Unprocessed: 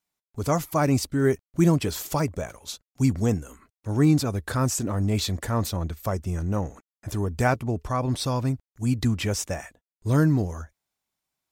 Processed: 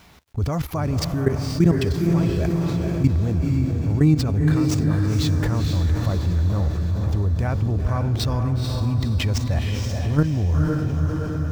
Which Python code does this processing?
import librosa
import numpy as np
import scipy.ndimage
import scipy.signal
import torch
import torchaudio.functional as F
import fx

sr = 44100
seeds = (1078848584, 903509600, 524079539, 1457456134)

y = scipy.ndimage.median_filter(x, 5, mode='constant')
y = fx.high_shelf(y, sr, hz=5400.0, db=-3.5)
y = fx.level_steps(y, sr, step_db=18)
y = fx.peak_eq(y, sr, hz=71.0, db=14.0, octaves=1.8)
y = fx.echo_diffused(y, sr, ms=488, feedback_pct=53, wet_db=-5.0)
y = fx.env_flatten(y, sr, amount_pct=50)